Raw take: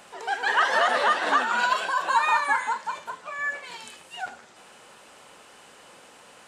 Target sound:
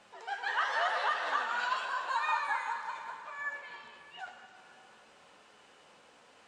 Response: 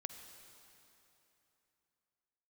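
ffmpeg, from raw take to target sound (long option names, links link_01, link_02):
-filter_complex "[0:a]asettb=1/sr,asplit=3[link_01][link_02][link_03];[link_01]atrim=end=3.614[link_04];[link_02]atrim=start=3.61:end=4.19,asetpts=PTS-STARTPTS,afade=type=in:duration=0.004:curve=qsin,afade=type=out:start_time=0.576:duration=0.004:curve=qsin,acrossover=split=3600[link_05][link_06];[link_06]acompressor=threshold=-56dB:ratio=4:attack=1:release=60[link_07];[link_05][link_07]amix=inputs=2:normalize=0[link_08];[link_03]atrim=start=4.186[link_09];[link_04][link_08]acrossfade=duration=0.004:curve1=hsin:curve2=qsin[link_10];[link_10][link_09]acrossfade=duration=0.004:curve1=qsin:curve2=hsin,lowpass=6300,flanger=delay=9.3:depth=4.7:regen=50:speed=0.91:shape=sinusoidal,acrossover=split=510[link_11][link_12];[link_11]acompressor=threshold=-56dB:ratio=6[link_13];[link_13][link_12]amix=inputs=2:normalize=0[link_14];[1:a]atrim=start_sample=2205[link_15];[link_14][link_15]afir=irnorm=-1:irlink=0,volume=-2dB"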